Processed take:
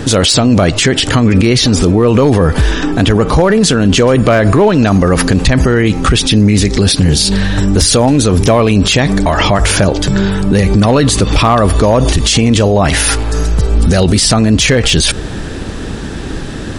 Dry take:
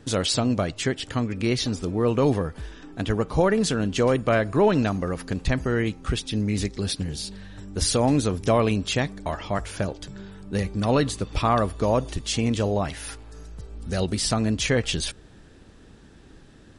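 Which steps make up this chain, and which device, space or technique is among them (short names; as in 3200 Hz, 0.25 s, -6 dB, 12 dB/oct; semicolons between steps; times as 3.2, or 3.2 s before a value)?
loud club master (compressor 2:1, threshold -24 dBFS, peak gain reduction 5.5 dB; hard clip -17.5 dBFS, distortion -26 dB; maximiser +29.5 dB); gain -1 dB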